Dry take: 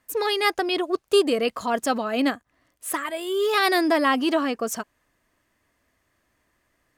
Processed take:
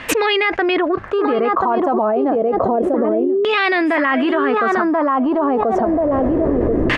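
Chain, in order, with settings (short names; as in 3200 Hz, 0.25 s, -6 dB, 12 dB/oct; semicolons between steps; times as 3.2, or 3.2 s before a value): recorder AGC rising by 14 dB/s; notches 50/100/150/200 Hz; on a send: feedback echo 1.034 s, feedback 16%, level -5.5 dB; on the sum: LFO low-pass saw down 0.29 Hz 370–2900 Hz; fast leveller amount 100%; gain -5 dB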